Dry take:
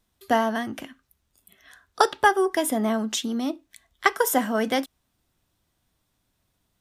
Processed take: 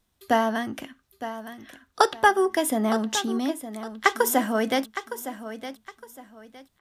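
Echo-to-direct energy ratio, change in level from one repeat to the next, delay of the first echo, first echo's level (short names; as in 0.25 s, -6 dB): -11.5 dB, -11.0 dB, 0.912 s, -12.0 dB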